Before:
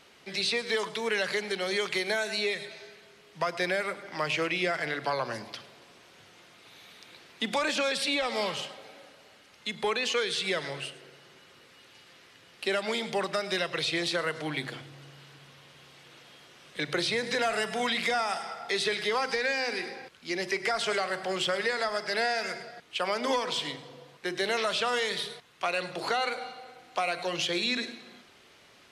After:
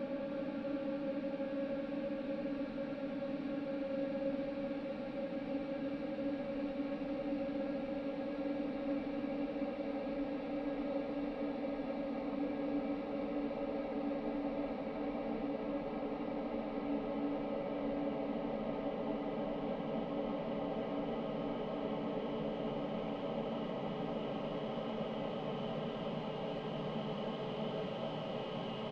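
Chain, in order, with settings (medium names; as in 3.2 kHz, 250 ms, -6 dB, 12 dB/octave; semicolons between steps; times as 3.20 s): low-pass that closes with the level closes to 630 Hz, closed at -25 dBFS; tone controls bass +11 dB, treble -5 dB; compression, threshold -33 dBFS, peak gain reduction 9.5 dB; Paulstretch 46×, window 1.00 s, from 7.88 s; delay 316 ms -6 dB; trim -3.5 dB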